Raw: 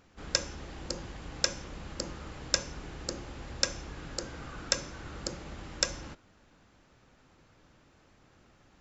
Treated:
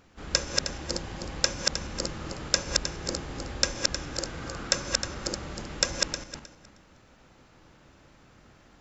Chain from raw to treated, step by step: backward echo that repeats 156 ms, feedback 41%, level -1.5 dB; trim +3 dB

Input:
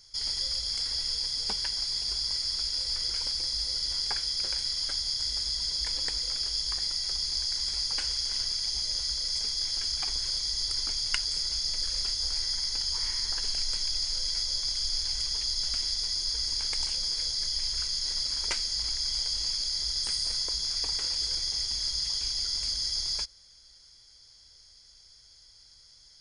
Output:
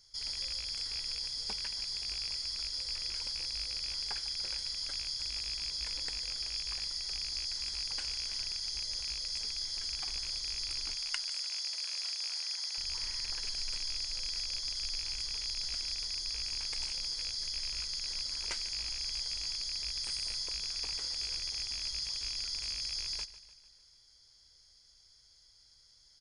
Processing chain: rattle on loud lows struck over -46 dBFS, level -27 dBFS; 10.95–12.78 s: high-pass 550 Hz 24 dB/octave; on a send: feedback delay 149 ms, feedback 54%, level -16 dB; on the sum: trim -7 dB

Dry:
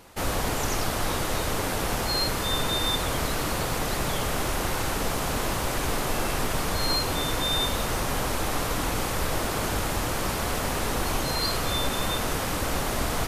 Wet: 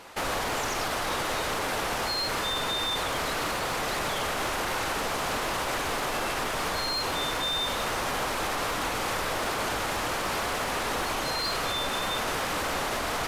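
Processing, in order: overdrive pedal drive 16 dB, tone 3.7 kHz, clips at -12 dBFS; peak limiter -19 dBFS, peak gain reduction 6 dB; trim -3 dB

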